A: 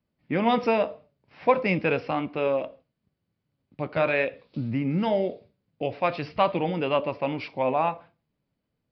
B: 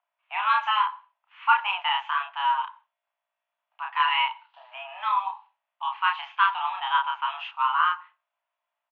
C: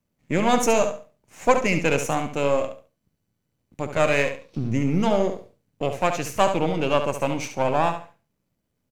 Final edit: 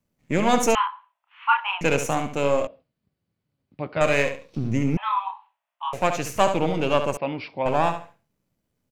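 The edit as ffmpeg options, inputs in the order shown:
-filter_complex "[1:a]asplit=2[a][b];[0:a]asplit=2[c][d];[2:a]asplit=5[e][f][g][h][i];[e]atrim=end=0.752[j];[a]atrim=start=0.748:end=1.812[k];[f]atrim=start=1.808:end=2.672[l];[c]atrim=start=2.668:end=4.012[m];[g]atrim=start=4.008:end=4.972[n];[b]atrim=start=4.968:end=5.932[o];[h]atrim=start=5.928:end=7.172[p];[d]atrim=start=7.168:end=7.662[q];[i]atrim=start=7.658[r];[j][k]acrossfade=d=0.004:c1=hsin:c2=hsin[s];[s][l]acrossfade=d=0.004:c1=hsin:c2=hsin[t];[t][m]acrossfade=d=0.004:c1=hsin:c2=hsin[u];[u][n]acrossfade=d=0.004:c1=hsin:c2=hsin[v];[v][o]acrossfade=d=0.004:c1=hsin:c2=hsin[w];[w][p]acrossfade=d=0.004:c1=hsin:c2=hsin[x];[x][q]acrossfade=d=0.004:c1=hsin:c2=hsin[y];[y][r]acrossfade=d=0.004:c1=hsin:c2=hsin"

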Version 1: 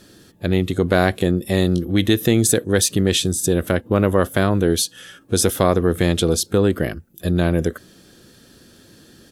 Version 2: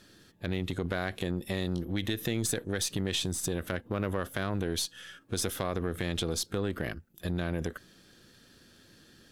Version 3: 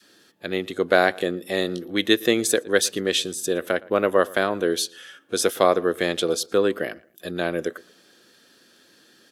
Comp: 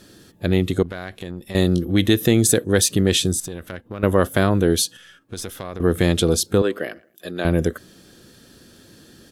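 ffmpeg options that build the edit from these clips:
-filter_complex "[1:a]asplit=3[a][b][c];[0:a]asplit=5[d][e][f][g][h];[d]atrim=end=0.832[i];[a]atrim=start=0.828:end=1.552[j];[e]atrim=start=1.548:end=3.402[k];[b]atrim=start=3.398:end=4.032[l];[f]atrim=start=4.028:end=4.972[m];[c]atrim=start=4.968:end=5.802[n];[g]atrim=start=5.798:end=6.622[o];[2:a]atrim=start=6.618:end=7.452[p];[h]atrim=start=7.448[q];[i][j]acrossfade=d=0.004:c1=hsin:c2=hsin[r];[r][k]acrossfade=d=0.004:c1=hsin:c2=hsin[s];[s][l]acrossfade=d=0.004:c1=hsin:c2=hsin[t];[t][m]acrossfade=d=0.004:c1=hsin:c2=hsin[u];[u][n]acrossfade=d=0.004:c1=hsin:c2=hsin[v];[v][o]acrossfade=d=0.004:c1=hsin:c2=hsin[w];[w][p]acrossfade=d=0.004:c1=hsin:c2=hsin[x];[x][q]acrossfade=d=0.004:c1=hsin:c2=hsin"

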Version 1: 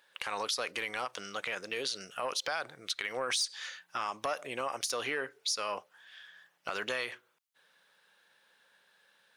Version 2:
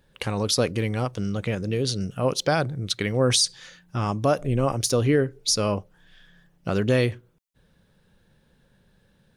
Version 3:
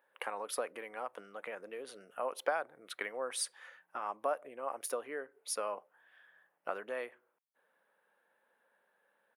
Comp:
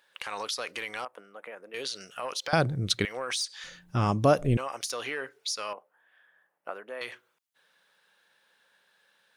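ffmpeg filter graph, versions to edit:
-filter_complex "[2:a]asplit=2[a][b];[1:a]asplit=2[c][d];[0:a]asplit=5[e][f][g][h][i];[e]atrim=end=1.052[j];[a]atrim=start=1.048:end=1.742[k];[f]atrim=start=1.738:end=2.532[l];[c]atrim=start=2.528:end=3.052[m];[g]atrim=start=3.048:end=3.642[n];[d]atrim=start=3.638:end=4.572[o];[h]atrim=start=4.568:end=5.732[p];[b]atrim=start=5.728:end=7.012[q];[i]atrim=start=7.008[r];[j][k]acrossfade=d=0.004:c1=hsin:c2=hsin[s];[s][l]acrossfade=d=0.004:c1=hsin:c2=hsin[t];[t][m]acrossfade=d=0.004:c1=hsin:c2=hsin[u];[u][n]acrossfade=d=0.004:c1=hsin:c2=hsin[v];[v][o]acrossfade=d=0.004:c1=hsin:c2=hsin[w];[w][p]acrossfade=d=0.004:c1=hsin:c2=hsin[x];[x][q]acrossfade=d=0.004:c1=hsin:c2=hsin[y];[y][r]acrossfade=d=0.004:c1=hsin:c2=hsin"

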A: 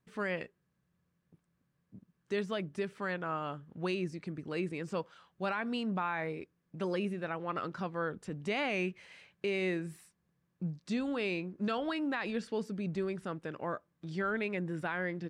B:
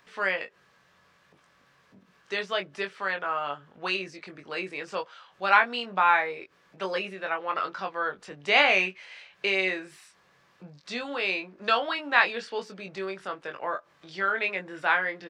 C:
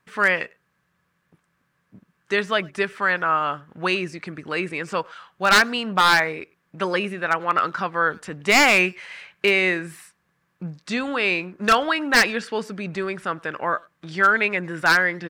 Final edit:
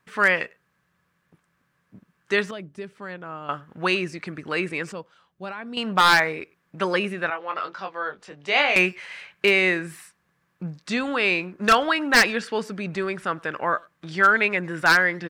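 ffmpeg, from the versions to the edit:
-filter_complex "[0:a]asplit=2[a][b];[2:a]asplit=4[c][d][e][f];[c]atrim=end=2.512[g];[a]atrim=start=2.508:end=3.492[h];[d]atrim=start=3.488:end=4.922[i];[b]atrim=start=4.918:end=5.772[j];[e]atrim=start=5.768:end=7.302[k];[1:a]atrim=start=7.298:end=8.762[l];[f]atrim=start=8.758[m];[g][h]acrossfade=d=0.004:c1=hsin:c2=hsin[n];[n][i]acrossfade=d=0.004:c1=hsin:c2=hsin[o];[o][j]acrossfade=d=0.004:c1=hsin:c2=hsin[p];[p][k]acrossfade=d=0.004:c1=hsin:c2=hsin[q];[q][l]acrossfade=d=0.004:c1=hsin:c2=hsin[r];[r][m]acrossfade=d=0.004:c1=hsin:c2=hsin"

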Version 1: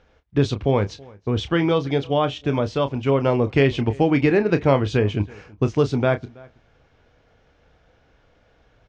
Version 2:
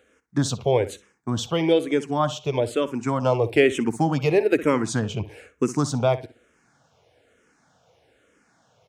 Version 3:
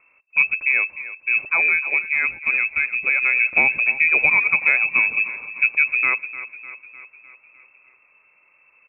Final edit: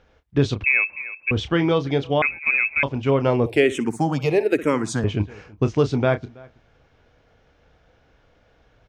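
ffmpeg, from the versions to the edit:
-filter_complex "[2:a]asplit=2[a][b];[0:a]asplit=4[c][d][e][f];[c]atrim=end=0.642[g];[a]atrim=start=0.638:end=1.312[h];[d]atrim=start=1.308:end=2.222[i];[b]atrim=start=2.218:end=2.832[j];[e]atrim=start=2.828:end=3.462[k];[1:a]atrim=start=3.458:end=5.042[l];[f]atrim=start=5.038[m];[g][h]acrossfade=d=0.004:c1=hsin:c2=hsin[n];[n][i]acrossfade=d=0.004:c1=hsin:c2=hsin[o];[o][j]acrossfade=d=0.004:c1=hsin:c2=hsin[p];[p][k]acrossfade=d=0.004:c1=hsin:c2=hsin[q];[q][l]acrossfade=d=0.004:c1=hsin:c2=hsin[r];[r][m]acrossfade=d=0.004:c1=hsin:c2=hsin"

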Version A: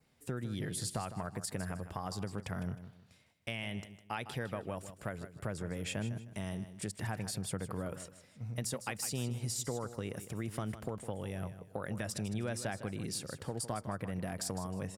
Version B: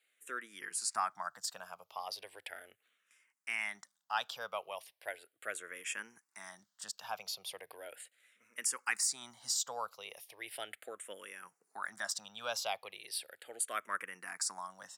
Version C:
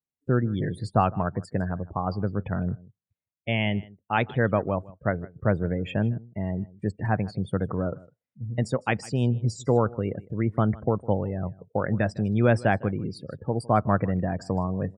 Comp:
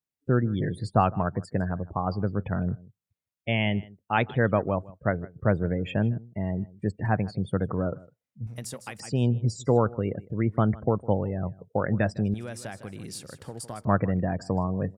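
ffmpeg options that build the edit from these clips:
-filter_complex "[0:a]asplit=2[a][b];[2:a]asplit=3[c][d][e];[c]atrim=end=8.472[f];[a]atrim=start=8.468:end=9.002[g];[d]atrim=start=8.998:end=12.342[h];[b]atrim=start=12.338:end=13.852[i];[e]atrim=start=13.848[j];[f][g]acrossfade=d=0.004:c1=hsin:c2=hsin[k];[k][h]acrossfade=d=0.004:c1=hsin:c2=hsin[l];[l][i]acrossfade=d=0.004:c1=hsin:c2=hsin[m];[m][j]acrossfade=d=0.004:c1=hsin:c2=hsin"

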